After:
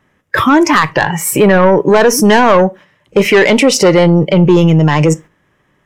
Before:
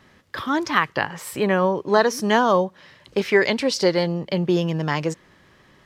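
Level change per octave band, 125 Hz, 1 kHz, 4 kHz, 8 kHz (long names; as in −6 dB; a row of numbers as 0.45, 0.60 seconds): +15.5, +10.0, +9.5, +16.5 decibels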